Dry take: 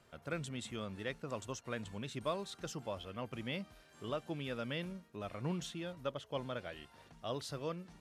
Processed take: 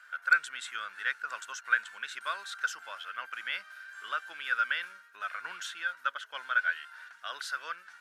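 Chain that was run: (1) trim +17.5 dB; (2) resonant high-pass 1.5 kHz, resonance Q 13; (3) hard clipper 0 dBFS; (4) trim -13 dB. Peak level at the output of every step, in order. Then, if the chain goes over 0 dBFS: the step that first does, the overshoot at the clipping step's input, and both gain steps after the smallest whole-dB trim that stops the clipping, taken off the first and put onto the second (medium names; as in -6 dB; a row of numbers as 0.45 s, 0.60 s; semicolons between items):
-6.5 dBFS, +3.0 dBFS, 0.0 dBFS, -13.0 dBFS; step 2, 3.0 dB; step 1 +14.5 dB, step 4 -10 dB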